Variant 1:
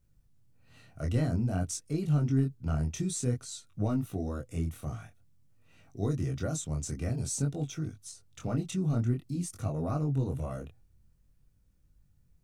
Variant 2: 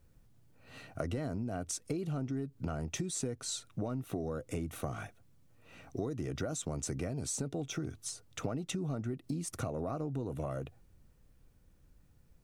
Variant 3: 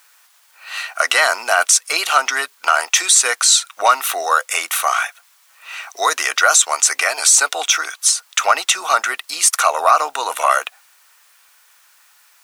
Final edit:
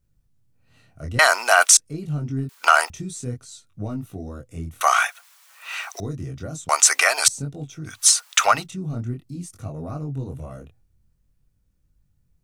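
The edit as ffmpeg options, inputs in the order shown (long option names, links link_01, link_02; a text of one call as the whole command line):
ffmpeg -i take0.wav -i take1.wav -i take2.wav -filter_complex "[2:a]asplit=5[link_01][link_02][link_03][link_04][link_05];[0:a]asplit=6[link_06][link_07][link_08][link_09][link_10][link_11];[link_06]atrim=end=1.192[link_12];[link_01]atrim=start=1.188:end=1.772[link_13];[link_07]atrim=start=1.768:end=2.492[link_14];[link_02]atrim=start=2.488:end=2.902[link_15];[link_08]atrim=start=2.898:end=4.812[link_16];[link_03]atrim=start=4.808:end=6.002[link_17];[link_09]atrim=start=5.998:end=6.692[link_18];[link_04]atrim=start=6.688:end=7.282[link_19];[link_10]atrim=start=7.278:end=8.08[link_20];[link_05]atrim=start=7.84:end=8.68[link_21];[link_11]atrim=start=8.44[link_22];[link_12][link_13]acrossfade=duration=0.004:curve1=hsin:curve2=hsin[link_23];[link_23][link_14]acrossfade=duration=0.004:curve1=hsin:curve2=hsin[link_24];[link_24][link_15]acrossfade=duration=0.004:curve1=hsin:curve2=hsin[link_25];[link_25][link_16]acrossfade=duration=0.004:curve1=hsin:curve2=hsin[link_26];[link_26][link_17]acrossfade=duration=0.004:curve1=hsin:curve2=hsin[link_27];[link_27][link_18]acrossfade=duration=0.004:curve1=hsin:curve2=hsin[link_28];[link_28][link_19]acrossfade=duration=0.004:curve1=hsin:curve2=hsin[link_29];[link_29][link_20]acrossfade=duration=0.004:curve1=hsin:curve2=hsin[link_30];[link_30][link_21]acrossfade=duration=0.24:curve1=tri:curve2=tri[link_31];[link_31][link_22]acrossfade=duration=0.24:curve1=tri:curve2=tri" out.wav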